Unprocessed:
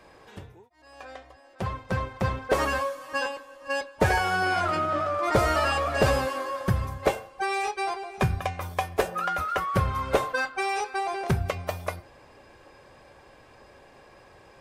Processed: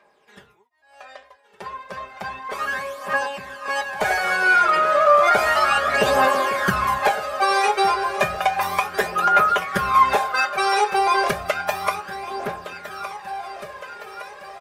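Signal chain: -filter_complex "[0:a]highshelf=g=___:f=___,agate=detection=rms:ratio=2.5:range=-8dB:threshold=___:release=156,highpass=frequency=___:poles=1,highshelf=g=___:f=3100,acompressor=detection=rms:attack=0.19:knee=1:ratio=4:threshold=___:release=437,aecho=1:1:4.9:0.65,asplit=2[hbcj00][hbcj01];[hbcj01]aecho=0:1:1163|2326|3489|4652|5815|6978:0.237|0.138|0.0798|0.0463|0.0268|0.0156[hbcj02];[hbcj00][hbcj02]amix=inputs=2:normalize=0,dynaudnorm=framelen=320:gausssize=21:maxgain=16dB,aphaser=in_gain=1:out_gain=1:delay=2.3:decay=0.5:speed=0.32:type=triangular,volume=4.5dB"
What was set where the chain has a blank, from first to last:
3.5, 11000, -46dB, 1200, -9, -35dB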